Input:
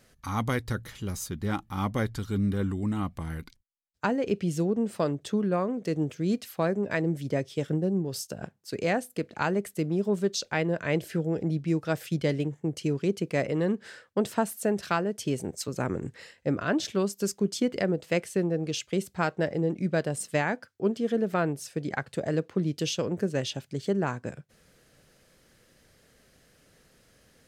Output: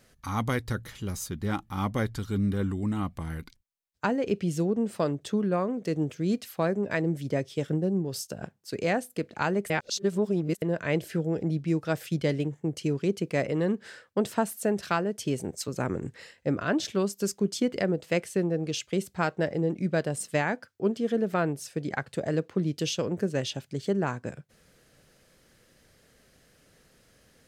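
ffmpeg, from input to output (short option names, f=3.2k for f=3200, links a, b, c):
-filter_complex "[0:a]asplit=3[a][b][c];[a]atrim=end=9.702[d];[b]atrim=start=9.698:end=10.622,asetpts=PTS-STARTPTS,areverse[e];[c]atrim=start=10.618[f];[d][e]acrossfade=d=0.004:c1=hsin:c2=hsin[g];[g][f]acrossfade=d=0.004:c1=hsin:c2=hsin"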